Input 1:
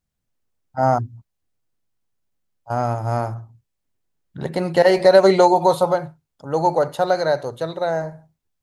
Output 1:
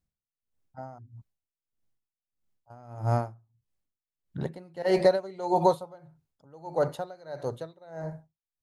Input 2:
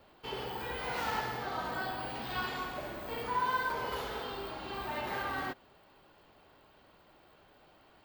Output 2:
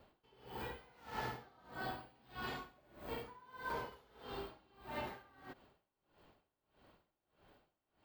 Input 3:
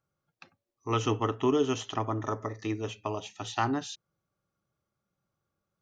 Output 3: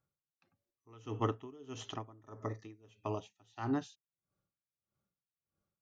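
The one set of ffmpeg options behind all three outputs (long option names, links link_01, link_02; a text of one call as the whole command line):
ffmpeg -i in.wav -af "lowshelf=frequency=450:gain=5,aeval=exprs='val(0)*pow(10,-26*(0.5-0.5*cos(2*PI*1.6*n/s))/20)':channel_layout=same,volume=-5.5dB" out.wav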